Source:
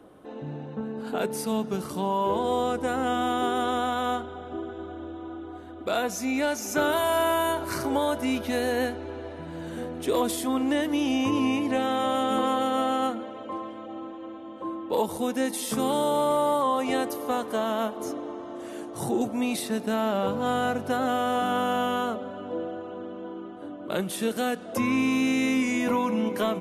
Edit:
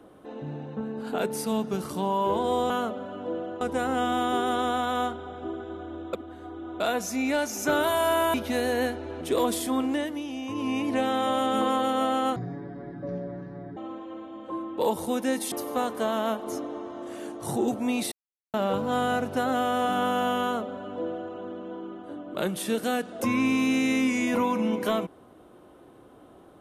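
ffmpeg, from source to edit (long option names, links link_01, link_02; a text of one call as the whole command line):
ffmpeg -i in.wav -filter_complex "[0:a]asplit=14[link_01][link_02][link_03][link_04][link_05][link_06][link_07][link_08][link_09][link_10][link_11][link_12][link_13][link_14];[link_01]atrim=end=2.702[link_15];[link_02]atrim=start=21.948:end=22.862[link_16];[link_03]atrim=start=2.698:end=5.222[link_17];[link_04]atrim=start=5.218:end=5.892,asetpts=PTS-STARTPTS,areverse[link_18];[link_05]atrim=start=5.888:end=7.432[link_19];[link_06]atrim=start=8.328:end=9.202[link_20];[link_07]atrim=start=9.978:end=11.01,asetpts=PTS-STARTPTS,afade=type=out:start_time=0.562:duration=0.47:silence=0.334965[link_21];[link_08]atrim=start=11.01:end=11.25,asetpts=PTS-STARTPTS,volume=-9.5dB[link_22];[link_09]atrim=start=11.25:end=13.134,asetpts=PTS-STARTPTS,afade=type=in:duration=0.47:silence=0.334965[link_23];[link_10]atrim=start=13.13:end=13.89,asetpts=PTS-STARTPTS,asetrate=23814,aresample=44100[link_24];[link_11]atrim=start=13.886:end=15.642[link_25];[link_12]atrim=start=17.048:end=19.65,asetpts=PTS-STARTPTS,afade=type=out:start_time=2.598:duration=0.004:curve=hsin[link_26];[link_13]atrim=start=19.65:end=20.07,asetpts=PTS-STARTPTS,volume=0[link_27];[link_14]atrim=start=20.07,asetpts=PTS-STARTPTS,afade=type=in:duration=0.004:curve=hsin[link_28];[link_15][link_16]acrossfade=duration=0.004:curve1=hsin:curve2=hsin[link_29];[link_29][link_17]acrossfade=duration=0.004:curve1=hsin:curve2=hsin[link_30];[link_30][link_18]acrossfade=duration=0.004:curve1=hsin:curve2=hsin[link_31];[link_31][link_19]acrossfade=duration=0.004:curve1=hsin:curve2=hsin[link_32];[link_32][link_20]acrossfade=duration=0.004:curve1=hsin:curve2=hsin[link_33];[link_21][link_22][link_23]concat=n=3:v=0:a=1[link_34];[link_33][link_34]acrossfade=duration=0.004:curve1=hsin:curve2=hsin[link_35];[link_35][link_24]acrossfade=duration=0.004:curve1=hsin:curve2=hsin[link_36];[link_36][link_25]acrossfade=duration=0.004:curve1=hsin:curve2=hsin[link_37];[link_26][link_27][link_28]concat=n=3:v=0:a=1[link_38];[link_37][link_38]acrossfade=duration=0.004:curve1=hsin:curve2=hsin" out.wav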